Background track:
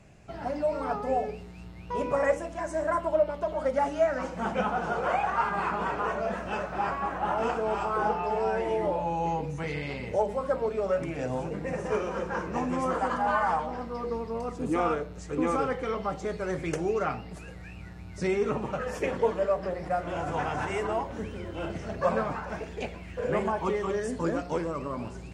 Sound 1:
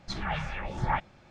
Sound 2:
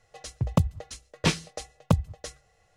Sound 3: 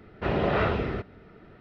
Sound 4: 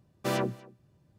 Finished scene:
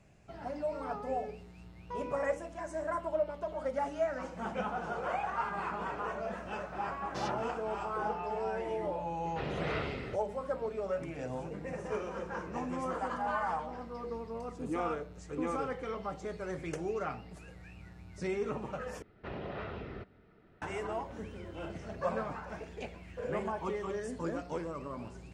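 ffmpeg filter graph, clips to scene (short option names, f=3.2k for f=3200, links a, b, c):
-filter_complex "[3:a]asplit=2[a][b];[0:a]volume=-7.5dB[c];[4:a]lowpass=f=5.6k:t=q:w=2.5[d];[a]highshelf=f=3.3k:g=12[e];[b]alimiter=limit=-20dB:level=0:latency=1:release=237[f];[c]asplit=2[g][h];[g]atrim=end=19.024[i];[f]atrim=end=1.6,asetpts=PTS-STARTPTS,volume=-11.5dB[j];[h]atrim=start=20.616[k];[d]atrim=end=1.18,asetpts=PTS-STARTPTS,volume=-11dB,afade=t=in:d=0.004:c=hsin,afade=t=out:st=1.176:d=0.004:c=hsin,adelay=304290S[l];[e]atrim=end=1.6,asetpts=PTS-STARTPTS,volume=-12.5dB,afade=t=in:d=0.004:c=hsin,afade=t=out:st=1.596:d=0.004:c=hsin,adelay=403074S[m];[i][j]acrossfade=d=0.004:c1=hsin:c2=hsin[n];[n][k]acrossfade=d=0.004:c1=hsin:c2=hsin[o];[o][l][m]amix=inputs=3:normalize=0"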